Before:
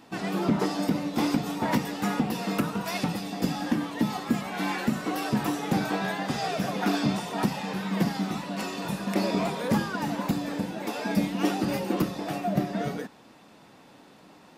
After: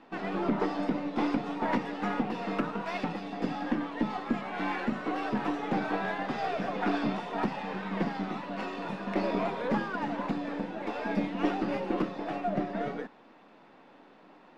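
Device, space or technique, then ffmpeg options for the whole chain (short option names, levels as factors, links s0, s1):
crystal radio: -af "highpass=240,lowpass=2500,aeval=exprs='if(lt(val(0),0),0.708*val(0),val(0))':c=same"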